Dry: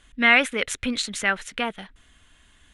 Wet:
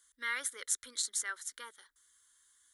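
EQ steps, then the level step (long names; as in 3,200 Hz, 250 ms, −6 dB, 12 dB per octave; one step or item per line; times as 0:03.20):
first difference
low-shelf EQ 60 Hz +12 dB
phaser with its sweep stopped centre 700 Hz, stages 6
0.0 dB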